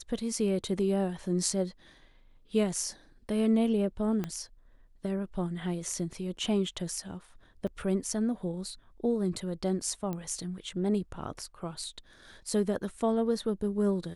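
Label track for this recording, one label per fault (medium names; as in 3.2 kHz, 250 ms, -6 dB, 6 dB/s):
4.240000	4.240000	pop -20 dBFS
7.670000	7.670000	dropout 4.8 ms
10.130000	10.130000	pop -23 dBFS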